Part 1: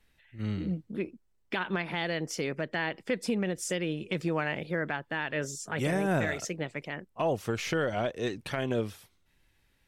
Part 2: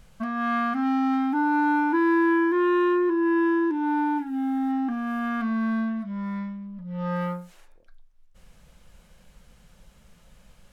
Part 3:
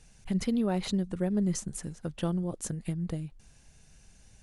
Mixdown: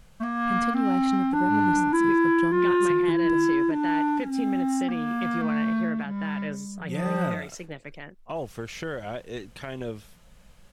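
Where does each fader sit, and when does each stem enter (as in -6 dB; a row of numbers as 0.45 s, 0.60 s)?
-4.0 dB, 0.0 dB, -3.0 dB; 1.10 s, 0.00 s, 0.20 s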